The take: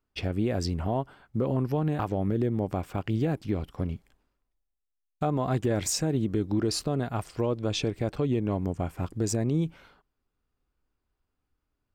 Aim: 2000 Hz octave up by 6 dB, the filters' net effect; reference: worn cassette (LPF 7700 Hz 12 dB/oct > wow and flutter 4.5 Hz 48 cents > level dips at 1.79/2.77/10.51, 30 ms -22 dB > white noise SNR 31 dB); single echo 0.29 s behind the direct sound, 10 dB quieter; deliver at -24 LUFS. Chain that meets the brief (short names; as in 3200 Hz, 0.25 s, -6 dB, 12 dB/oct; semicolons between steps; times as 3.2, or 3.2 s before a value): LPF 7700 Hz 12 dB/oct; bell 2000 Hz +8 dB; echo 0.29 s -10 dB; wow and flutter 4.5 Hz 48 cents; level dips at 1.79/2.77/10.51, 30 ms -22 dB; white noise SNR 31 dB; gain +5 dB